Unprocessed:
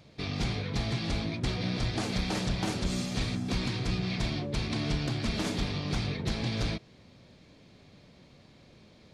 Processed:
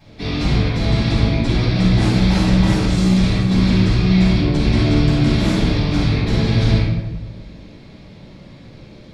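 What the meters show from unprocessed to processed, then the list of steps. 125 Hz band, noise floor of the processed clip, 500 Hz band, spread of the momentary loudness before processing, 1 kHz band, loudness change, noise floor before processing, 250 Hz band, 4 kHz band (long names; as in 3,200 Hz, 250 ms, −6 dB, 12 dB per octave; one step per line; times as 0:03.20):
+17.0 dB, −41 dBFS, +13.5 dB, 2 LU, +11.5 dB, +15.5 dB, −57 dBFS, +17.0 dB, +10.0 dB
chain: parametric band 9,600 Hz −3 dB 2.1 octaves
brickwall limiter −23.5 dBFS, peak gain reduction 4.5 dB
rectangular room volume 500 cubic metres, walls mixed, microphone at 8.8 metres
level −2.5 dB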